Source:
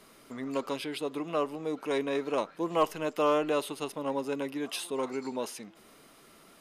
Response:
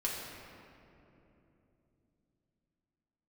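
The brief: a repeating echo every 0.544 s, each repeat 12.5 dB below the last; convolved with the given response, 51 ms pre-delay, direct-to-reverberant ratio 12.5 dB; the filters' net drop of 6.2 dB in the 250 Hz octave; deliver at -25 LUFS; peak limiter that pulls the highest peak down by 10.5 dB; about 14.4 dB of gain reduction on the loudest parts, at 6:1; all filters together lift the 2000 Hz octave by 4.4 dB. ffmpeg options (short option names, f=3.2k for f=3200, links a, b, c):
-filter_complex "[0:a]equalizer=f=250:t=o:g=-8,equalizer=f=2k:t=o:g=6,acompressor=threshold=-37dB:ratio=6,alimiter=level_in=11dB:limit=-24dB:level=0:latency=1,volume=-11dB,aecho=1:1:544|1088|1632:0.237|0.0569|0.0137,asplit=2[a][b];[1:a]atrim=start_sample=2205,adelay=51[c];[b][c]afir=irnorm=-1:irlink=0,volume=-17dB[d];[a][d]amix=inputs=2:normalize=0,volume=20.5dB"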